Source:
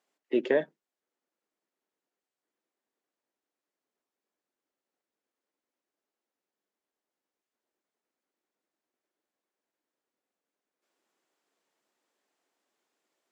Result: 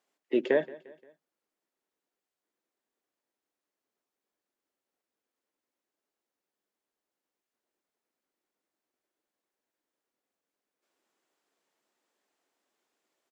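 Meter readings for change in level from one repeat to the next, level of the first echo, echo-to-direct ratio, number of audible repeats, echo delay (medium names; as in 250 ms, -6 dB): -6.5 dB, -20.5 dB, -19.5 dB, 3, 175 ms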